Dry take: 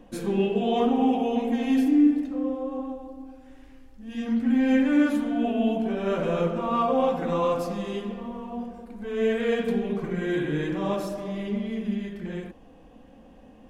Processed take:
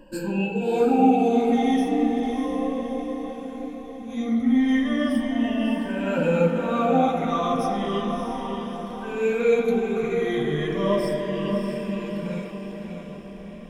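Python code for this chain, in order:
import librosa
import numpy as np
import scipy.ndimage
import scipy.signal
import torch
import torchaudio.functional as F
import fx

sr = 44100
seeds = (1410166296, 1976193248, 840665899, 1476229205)

y = fx.spec_ripple(x, sr, per_octave=1.3, drift_hz=-0.35, depth_db=22)
y = fx.echo_diffused(y, sr, ms=637, feedback_pct=53, wet_db=-6.0)
y = F.gain(torch.from_numpy(y), -2.5).numpy()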